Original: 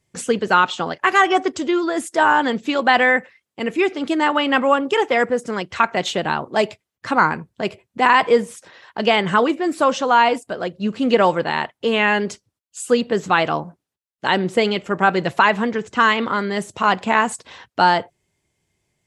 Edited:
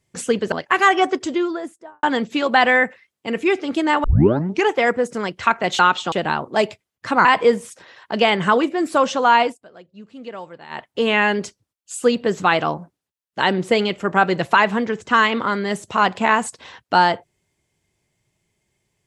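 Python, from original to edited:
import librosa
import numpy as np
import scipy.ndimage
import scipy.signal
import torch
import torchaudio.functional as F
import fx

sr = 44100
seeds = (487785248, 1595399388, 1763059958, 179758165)

y = fx.studio_fade_out(x, sr, start_s=1.52, length_s=0.84)
y = fx.edit(y, sr, fx.move(start_s=0.52, length_s=0.33, to_s=6.12),
    fx.tape_start(start_s=4.37, length_s=0.65),
    fx.cut(start_s=7.25, length_s=0.86),
    fx.fade_down_up(start_s=10.28, length_s=1.45, db=-18.5, fade_s=0.18), tone=tone)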